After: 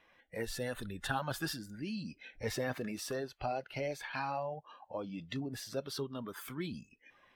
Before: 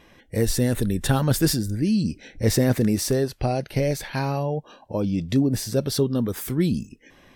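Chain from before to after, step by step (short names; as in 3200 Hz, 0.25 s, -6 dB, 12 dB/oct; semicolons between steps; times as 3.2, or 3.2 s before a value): bin magnitudes rounded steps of 15 dB; three-band isolator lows -15 dB, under 600 Hz, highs -13 dB, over 3400 Hz; in parallel at +2 dB: compressor, threshold -44 dBFS, peak gain reduction 19 dB; on the sum: spectral noise reduction 8 dB; gain -7 dB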